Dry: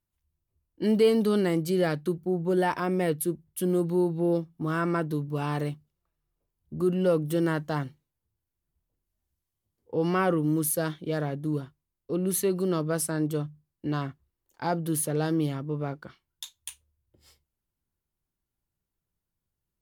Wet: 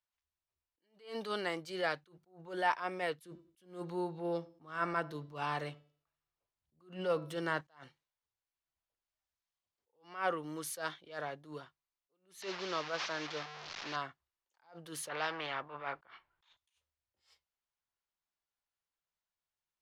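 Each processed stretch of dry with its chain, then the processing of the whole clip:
3.25–7.61 bell 110 Hz +7.5 dB 2.7 oct + de-hum 327.9 Hz, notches 23 + darkening echo 94 ms, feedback 29%, low-pass 1100 Hz, level -20 dB
12.42–13.96 delta modulation 32 kbps, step -31 dBFS + low shelf 68 Hz -9.5 dB
15.09–16.57 self-modulated delay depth 0.082 ms + LPF 1800 Hz + spectral compressor 2:1
whole clip: three-band isolator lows -21 dB, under 600 Hz, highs -19 dB, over 6800 Hz; attack slew limiter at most 150 dB/s; gain -1 dB

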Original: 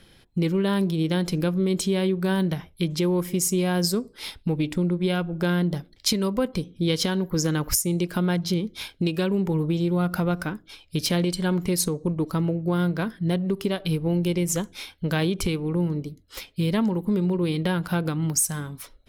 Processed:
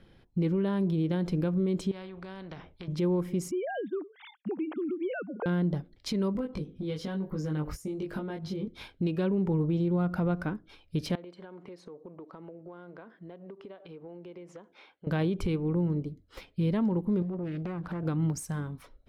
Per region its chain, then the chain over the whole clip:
1.91–2.88 Bessel low-pass 4500 Hz, order 4 + compressor 3:1, threshold -25 dBFS + spectral compressor 2:1
3.51–5.46 sine-wave speech + HPF 340 Hz + compressor 5:1, threshold -26 dBFS
6.33–8.68 compressor 5:1, threshold -29 dBFS + doubler 20 ms -2 dB
11.15–15.07 HPF 480 Hz + tape spacing loss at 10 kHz 22 dB + compressor, threshold -39 dBFS
17.22–18.03 high shelf 6000 Hz -6.5 dB + compressor, threshold -29 dBFS + Doppler distortion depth 0.45 ms
whole clip: LPF 1100 Hz 6 dB/oct; limiter -19 dBFS; gain -2 dB

